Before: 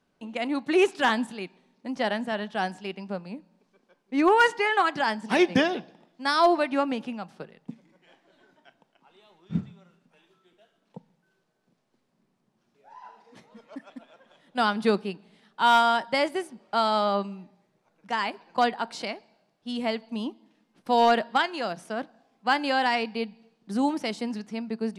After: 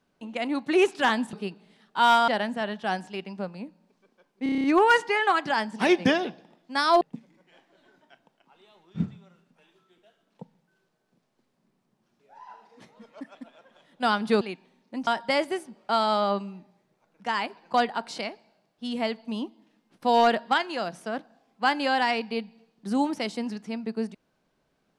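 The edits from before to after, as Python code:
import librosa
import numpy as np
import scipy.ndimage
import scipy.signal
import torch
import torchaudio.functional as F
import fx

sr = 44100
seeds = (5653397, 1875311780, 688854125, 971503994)

y = fx.edit(x, sr, fx.swap(start_s=1.33, length_s=0.66, other_s=14.96, other_length_s=0.95),
    fx.stutter(start_s=4.14, slice_s=0.03, count=8),
    fx.cut(start_s=6.51, length_s=1.05), tone=tone)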